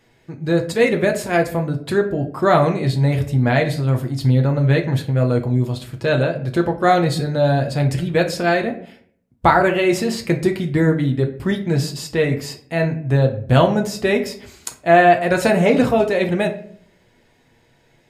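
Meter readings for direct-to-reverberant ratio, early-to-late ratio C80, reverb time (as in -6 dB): 2.5 dB, 15.5 dB, 0.55 s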